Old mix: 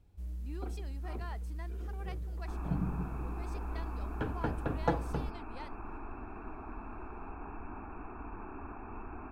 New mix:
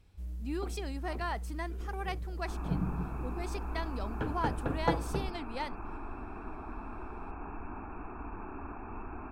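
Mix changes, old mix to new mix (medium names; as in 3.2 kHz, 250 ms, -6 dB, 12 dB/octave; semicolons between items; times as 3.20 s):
speech +10.5 dB; reverb: on, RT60 0.60 s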